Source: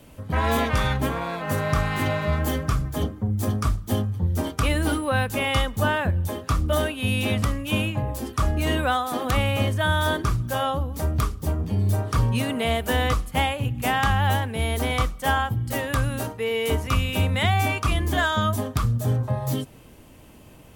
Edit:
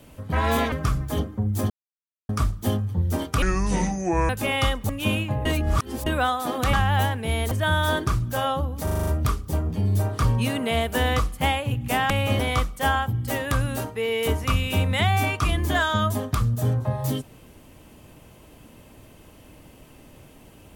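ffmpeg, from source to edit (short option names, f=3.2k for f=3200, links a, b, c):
-filter_complex "[0:a]asplit=18[a][b][c][d][e][f][g][h][i][j][k][l][m][n][o][p][q][r];[a]atrim=end=0.722[s];[b]atrim=start=2.558:end=3.54,asetpts=PTS-STARTPTS,afade=t=out:st=0.978:d=0.004:c=hsin,apad=pad_dur=0.59[t];[c]atrim=start=3.54:end=4.674,asetpts=PTS-STARTPTS,afade=t=in:d=0.004:c=hsin[u];[d]atrim=start=4.67:end=5.22,asetpts=PTS-STARTPTS,asetrate=27783,aresample=44100[v];[e]atrim=start=5.216:end=5.822[w];[f]atrim=start=7.558:end=8.122[x];[g]atrim=start=8.118:end=8.732,asetpts=PTS-STARTPTS,areverse[y];[h]atrim=start=8.728:end=9.402[z];[i]atrim=start=14.038:end=14.822[aa];[j]atrim=start=9.688:end=11.052[ab];[k]atrim=start=11.008:end=11.052[ac];[l]atrim=start=11.008:end=11.052[ad];[m]atrim=start=11.008:end=11.052[ae];[n]atrim=start=11.008:end=11.052[af];[o]atrim=start=11.008:end=11.052[ag];[p]atrim=start=11.008:end=14.042[ah];[q]atrim=start=9.398:end=9.692[ai];[r]atrim=start=14.818[aj];[t][u]concat=n=2:v=0:a=1[ak];[s][ak]acrossfade=d=0.004:c1=hsin:c2=hsin[al];[al][v]acrossfade=d=0.004:c1=hsin:c2=hsin[am];[am][w]acrossfade=d=0.004:c1=hsin:c2=hsin[an];[an][x]acrossfade=d=0.004:c1=hsin:c2=hsin[ao];[ao][y]acrossfade=d=0.004:c1=hsin:c2=hsin[ap];[ap][z]acrossfade=d=0.004:c1=hsin:c2=hsin[aq];[aq][aa]acrossfade=d=0.004:c1=hsin:c2=hsin[ar];[ar][ab]acrossfade=d=0.004:c1=hsin:c2=hsin[as];[as][ac]acrossfade=d=0.004:c1=hsin:c2=hsin[at];[at][ad]acrossfade=d=0.004:c1=hsin:c2=hsin[au];[au][ae]acrossfade=d=0.004:c1=hsin:c2=hsin[av];[av][af]acrossfade=d=0.004:c1=hsin:c2=hsin[aw];[aw][ag]acrossfade=d=0.004:c1=hsin:c2=hsin[ax];[ax][ah]acrossfade=d=0.004:c1=hsin:c2=hsin[ay];[ay][ai]acrossfade=d=0.004:c1=hsin:c2=hsin[az];[az][aj]acrossfade=d=0.004:c1=hsin:c2=hsin"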